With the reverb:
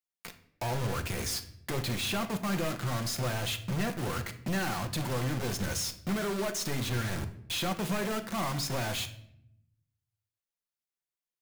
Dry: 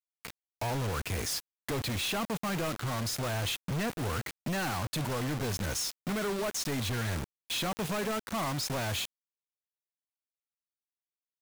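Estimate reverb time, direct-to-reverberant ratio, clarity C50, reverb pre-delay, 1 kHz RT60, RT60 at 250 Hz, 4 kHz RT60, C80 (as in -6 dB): 0.70 s, 6.0 dB, 12.5 dB, 5 ms, 0.65 s, 1.2 s, 0.50 s, 16.0 dB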